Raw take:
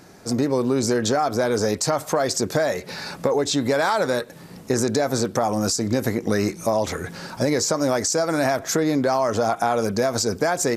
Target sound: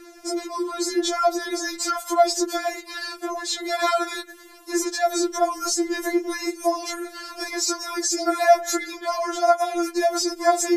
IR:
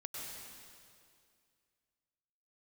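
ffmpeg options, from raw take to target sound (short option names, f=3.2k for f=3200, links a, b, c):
-filter_complex "[0:a]asettb=1/sr,asplit=3[a][b][c];[a]atrim=end=9.354[d];[b]atrim=start=9.35:end=9.77,asetpts=PTS-STARTPTS,afade=t=in:d=0.004:c=qsin,afade=t=out:st=0.416:d=0.004:c=qsin,highpass=520[e];[c]atrim=start=9.766[f];[d][e]acrossfade=d=0.004:c1=hsin:c2=qsin[g];[g][f]acrossfade=d=0.004:c1=qsin:c2=hsin,afftfilt=real='re*4*eq(mod(b,16),0)':imag='im*4*eq(mod(b,16),0)':win_size=2048:overlap=0.75,volume=3dB"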